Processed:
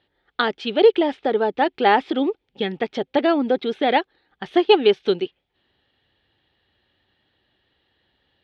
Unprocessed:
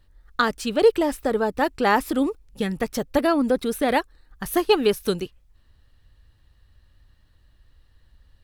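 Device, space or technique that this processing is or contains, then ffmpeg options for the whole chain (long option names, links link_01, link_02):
kitchen radio: -af "highpass=210,equalizer=frequency=380:width_type=q:width=4:gain=7,equalizer=frequency=790:width_type=q:width=4:gain=7,equalizer=frequency=1100:width_type=q:width=4:gain=-6,equalizer=frequency=2200:width_type=q:width=4:gain=4,equalizer=frequency=3300:width_type=q:width=4:gain=9,lowpass=frequency=4000:width=0.5412,lowpass=frequency=4000:width=1.3066"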